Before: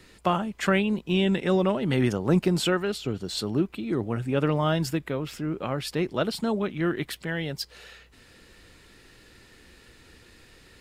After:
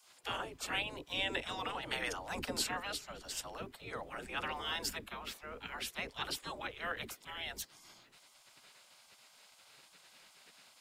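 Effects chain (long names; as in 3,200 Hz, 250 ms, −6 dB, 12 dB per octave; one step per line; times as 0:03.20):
all-pass dispersion lows, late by 60 ms, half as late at 330 Hz
gate on every frequency bin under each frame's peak −15 dB weak
level −2 dB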